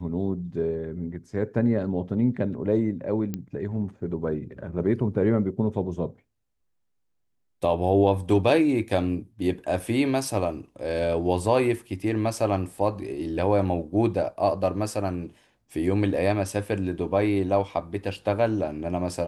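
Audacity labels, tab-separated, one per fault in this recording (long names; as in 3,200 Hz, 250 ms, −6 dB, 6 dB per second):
3.340000	3.340000	click −17 dBFS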